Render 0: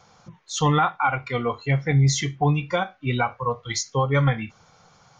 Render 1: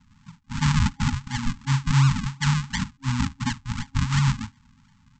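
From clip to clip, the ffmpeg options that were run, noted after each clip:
-af "aresample=16000,acrusher=samples=24:mix=1:aa=0.000001:lfo=1:lforange=24:lforate=2.8,aresample=44100,afftfilt=real='re*(1-between(b*sr/4096,270,820))':imag='im*(1-between(b*sr/4096,270,820))':win_size=4096:overlap=0.75"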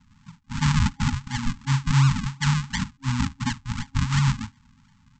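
-af anull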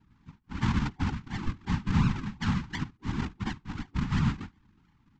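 -af "afftfilt=real='hypot(re,im)*cos(2*PI*random(0))':imag='hypot(re,im)*sin(2*PI*random(1))':win_size=512:overlap=0.75,adynamicsmooth=sensitivity=1:basefreq=4k"

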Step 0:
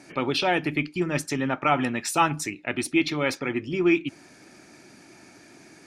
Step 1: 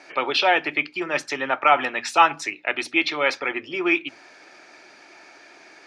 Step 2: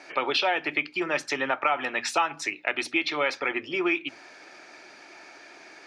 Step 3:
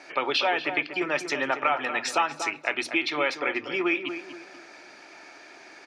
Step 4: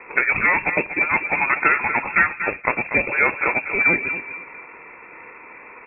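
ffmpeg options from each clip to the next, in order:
-filter_complex "[0:a]acrossover=split=440 5400:gain=0.0708 1 0.0708[a][b][c];[a][b][c]amix=inputs=3:normalize=0,bandreject=f=60:t=h:w=6,bandreject=f=120:t=h:w=6,bandreject=f=180:t=h:w=6,bandreject=f=240:t=h:w=6,volume=6.5dB"
-af "acompressor=threshold=-22dB:ratio=4"
-filter_complex "[0:a]asplit=2[a][b];[b]adelay=239,lowpass=f=1.9k:p=1,volume=-8.5dB,asplit=2[c][d];[d]adelay=239,lowpass=f=1.9k:p=1,volume=0.37,asplit=2[e][f];[f]adelay=239,lowpass=f=1.9k:p=1,volume=0.37,asplit=2[g][h];[h]adelay=239,lowpass=f=1.9k:p=1,volume=0.37[i];[a][c][e][g][i]amix=inputs=5:normalize=0"
-filter_complex "[0:a]asplit=2[a][b];[b]acrusher=samples=34:mix=1:aa=0.000001:lfo=1:lforange=20.4:lforate=3,volume=-7dB[c];[a][c]amix=inputs=2:normalize=0,lowpass=f=2.3k:t=q:w=0.5098,lowpass=f=2.3k:t=q:w=0.6013,lowpass=f=2.3k:t=q:w=0.9,lowpass=f=2.3k:t=q:w=2.563,afreqshift=-2700,volume=6.5dB"

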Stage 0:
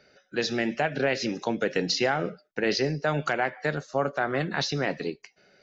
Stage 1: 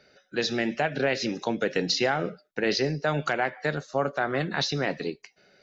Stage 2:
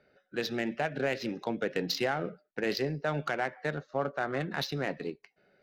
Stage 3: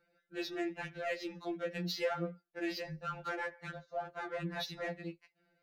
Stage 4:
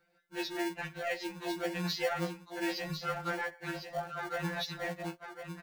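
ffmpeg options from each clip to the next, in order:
-af "equalizer=f=3.8k:w=5.6:g=3.5"
-af "adynamicsmooth=sensitivity=2.5:basefreq=2.5k,volume=-5dB"
-af "afftfilt=real='re*2.83*eq(mod(b,8),0)':imag='im*2.83*eq(mod(b,8),0)':win_size=2048:overlap=0.75,volume=-4dB"
-filter_complex "[0:a]acrossover=split=450|2400[a][b][c];[a]acrusher=samples=35:mix=1:aa=0.000001[d];[d][b][c]amix=inputs=3:normalize=0,aecho=1:1:1052:0.422,volume=3dB"

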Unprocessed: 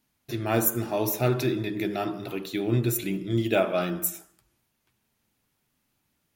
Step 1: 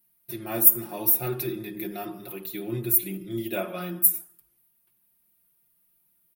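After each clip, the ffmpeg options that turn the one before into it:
-af "aecho=1:1:5.6:0.9,aexciter=amount=5.3:drive=8.4:freq=9.5k,volume=-9dB"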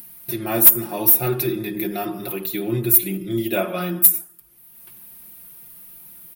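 -filter_complex "[0:a]asplit=2[a][b];[b]acompressor=mode=upward:threshold=-28dB:ratio=2.5,volume=3dB[c];[a][c]amix=inputs=2:normalize=0,asoftclip=type=tanh:threshold=-1dB"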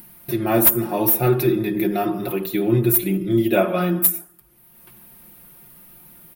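-af "highshelf=f=2.6k:g=-10,volume=5.5dB"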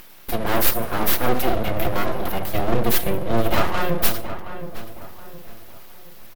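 -filter_complex "[0:a]aeval=exprs='(tanh(4.47*val(0)+0.45)-tanh(0.45))/4.47':c=same,aeval=exprs='abs(val(0))':c=same,asplit=2[a][b];[b]adelay=720,lowpass=f=1.9k:p=1,volume=-10.5dB,asplit=2[c][d];[d]adelay=720,lowpass=f=1.9k:p=1,volume=0.39,asplit=2[e][f];[f]adelay=720,lowpass=f=1.9k:p=1,volume=0.39,asplit=2[g][h];[h]adelay=720,lowpass=f=1.9k:p=1,volume=0.39[i];[a][c][e][g][i]amix=inputs=5:normalize=0,volume=4dB"

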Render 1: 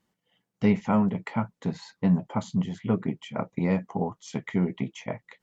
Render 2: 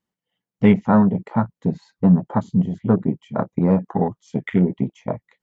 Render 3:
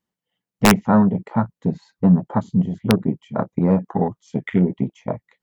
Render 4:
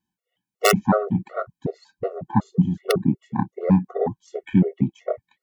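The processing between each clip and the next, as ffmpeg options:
-af "afwtdn=0.0158,volume=8dB"
-af "aeval=exprs='(mod(1.58*val(0)+1,2)-1)/1.58':c=same"
-af "afftfilt=real='re*gt(sin(2*PI*2.7*pts/sr)*(1-2*mod(floor(b*sr/1024/370),2)),0)':imag='im*gt(sin(2*PI*2.7*pts/sr)*(1-2*mod(floor(b*sr/1024/370),2)),0)':win_size=1024:overlap=0.75,volume=2dB"

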